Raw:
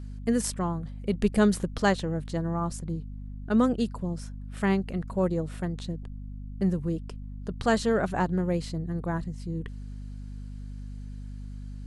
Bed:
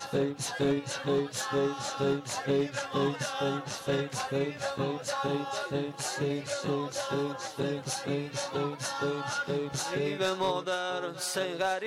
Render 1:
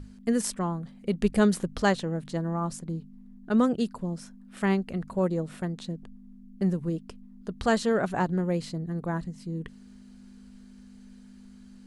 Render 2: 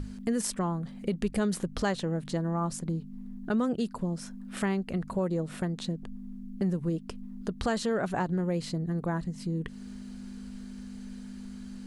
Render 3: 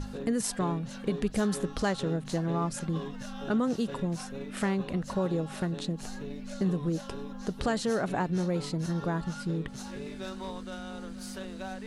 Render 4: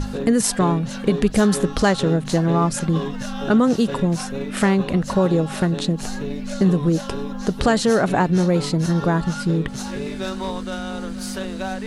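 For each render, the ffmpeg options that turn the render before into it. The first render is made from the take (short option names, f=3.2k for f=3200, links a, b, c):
-af "bandreject=f=50:t=h:w=6,bandreject=f=100:t=h:w=6,bandreject=f=150:t=h:w=6"
-filter_complex "[0:a]asplit=2[a][b];[b]alimiter=limit=-21dB:level=0:latency=1:release=21,volume=3dB[c];[a][c]amix=inputs=2:normalize=0,acompressor=threshold=-33dB:ratio=2"
-filter_complex "[1:a]volume=-11.5dB[a];[0:a][a]amix=inputs=2:normalize=0"
-af "volume=11.5dB"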